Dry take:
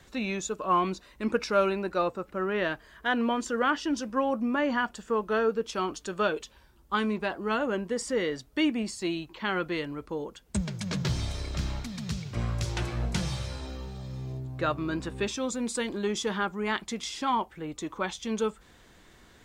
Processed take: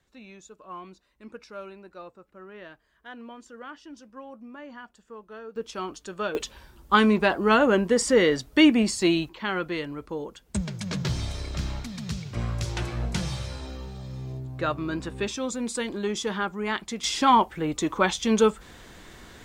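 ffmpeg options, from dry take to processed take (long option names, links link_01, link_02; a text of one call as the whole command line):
ffmpeg -i in.wav -af "asetnsamples=nb_out_samples=441:pad=0,asendcmd='5.56 volume volume -3dB;6.35 volume volume 9dB;9.29 volume volume 1dB;17.04 volume volume 9dB',volume=-15.5dB" out.wav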